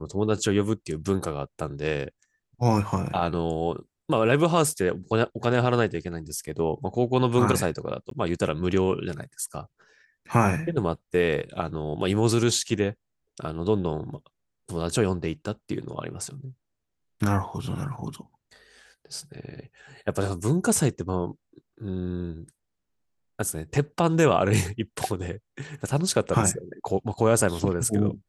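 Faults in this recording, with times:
0:08.10–0:08.11: drop-out 13 ms

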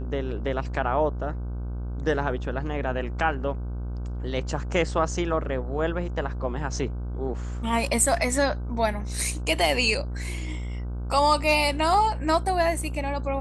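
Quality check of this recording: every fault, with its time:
mains buzz 60 Hz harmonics 26 −31 dBFS

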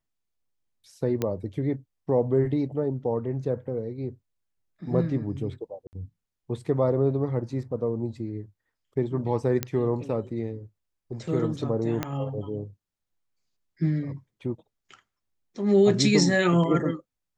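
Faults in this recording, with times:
0:01.22: click −13 dBFS
0:05.87–0:05.93: drop-out 59 ms
0:09.63: click −10 dBFS
0:12.03: click −12 dBFS

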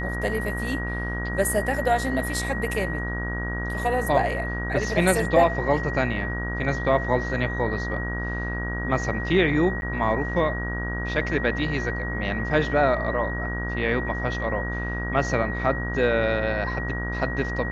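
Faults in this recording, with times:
mains buzz 60 Hz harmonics 29 −30 dBFS
whistle 1,900 Hz −31 dBFS
0:09.81–0:09.82: drop-out 11 ms

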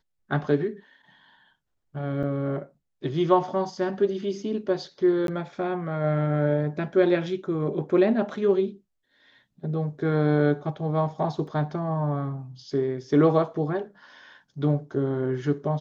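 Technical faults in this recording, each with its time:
0:02.23–0:02.24: drop-out 5.4 ms
0:05.27–0:05.28: drop-out 12 ms
0:11.47: drop-out 4 ms

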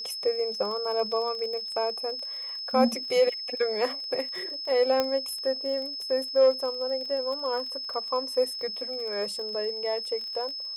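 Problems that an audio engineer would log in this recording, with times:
surface crackle 25 per second −34 dBFS
whistle 5,200 Hz −33 dBFS
0:05.00: click −11 dBFS

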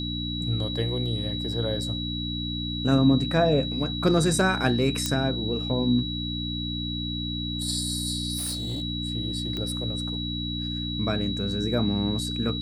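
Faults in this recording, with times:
mains hum 60 Hz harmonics 5 −32 dBFS
whistle 3,900 Hz −32 dBFS
0:05.06: click −10 dBFS
0:08.37–0:08.82: clipping −26.5 dBFS
0:09.57: click −19 dBFS

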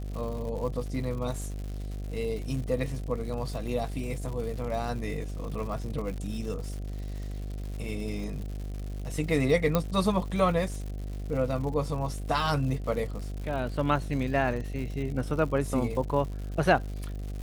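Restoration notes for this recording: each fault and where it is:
mains buzz 50 Hz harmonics 15 −35 dBFS
surface crackle 180 per second −37 dBFS
0:09.75: click −11 dBFS

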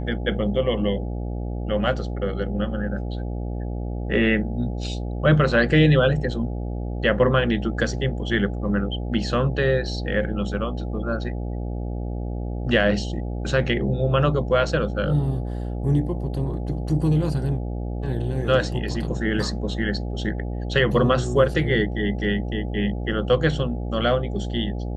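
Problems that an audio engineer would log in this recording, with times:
mains buzz 60 Hz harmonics 14 −28 dBFS

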